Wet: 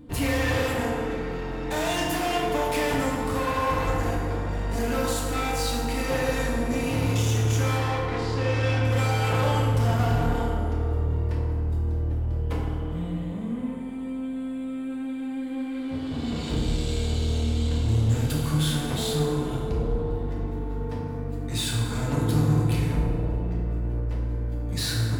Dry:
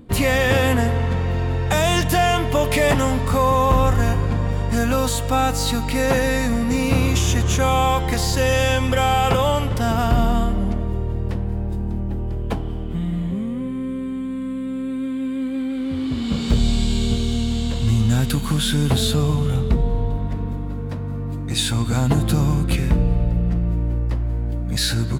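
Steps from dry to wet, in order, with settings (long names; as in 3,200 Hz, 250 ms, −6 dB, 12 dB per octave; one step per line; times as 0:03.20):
0:07.77–0:08.85: low-pass filter 3,100 Hz 12 dB per octave
soft clipping −21 dBFS, distortion −9 dB
feedback delay network reverb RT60 1.9 s, low-frequency decay 0.85×, high-frequency decay 0.5×, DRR −4.5 dB
level −6.5 dB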